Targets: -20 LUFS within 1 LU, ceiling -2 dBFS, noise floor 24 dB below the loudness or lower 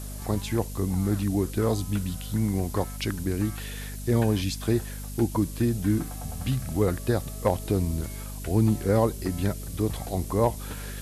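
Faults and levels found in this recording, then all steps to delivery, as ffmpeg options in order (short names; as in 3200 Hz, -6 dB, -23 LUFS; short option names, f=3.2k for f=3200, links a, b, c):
hum 50 Hz; harmonics up to 250 Hz; hum level -35 dBFS; noise floor -36 dBFS; noise floor target -52 dBFS; loudness -27.5 LUFS; peak -11.0 dBFS; loudness target -20.0 LUFS
-> -af "bandreject=f=50:t=h:w=6,bandreject=f=100:t=h:w=6,bandreject=f=150:t=h:w=6,bandreject=f=200:t=h:w=6,bandreject=f=250:t=h:w=6"
-af "afftdn=nr=16:nf=-36"
-af "volume=7.5dB"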